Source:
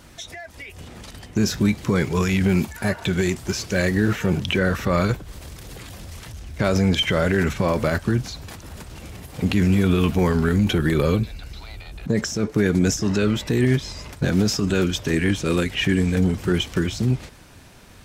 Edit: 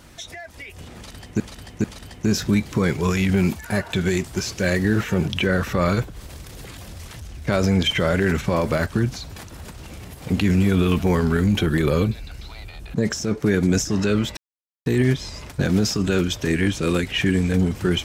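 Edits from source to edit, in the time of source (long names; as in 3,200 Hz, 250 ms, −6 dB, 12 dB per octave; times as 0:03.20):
0:00.96–0:01.40: repeat, 3 plays
0:13.49: splice in silence 0.49 s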